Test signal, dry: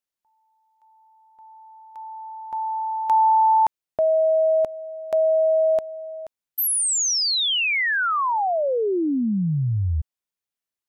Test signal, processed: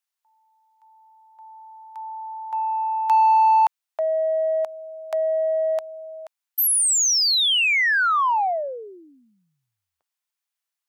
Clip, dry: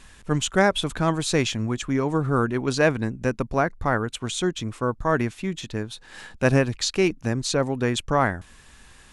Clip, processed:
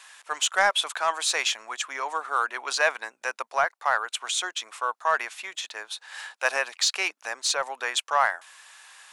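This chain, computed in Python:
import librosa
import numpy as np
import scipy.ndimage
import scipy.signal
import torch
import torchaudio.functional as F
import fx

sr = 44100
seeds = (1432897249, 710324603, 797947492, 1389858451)

p1 = scipy.signal.sosfilt(scipy.signal.butter(4, 740.0, 'highpass', fs=sr, output='sos'), x)
p2 = 10.0 ** (-22.0 / 20.0) * np.tanh(p1 / 10.0 ** (-22.0 / 20.0))
y = p1 + (p2 * librosa.db_to_amplitude(-6.0))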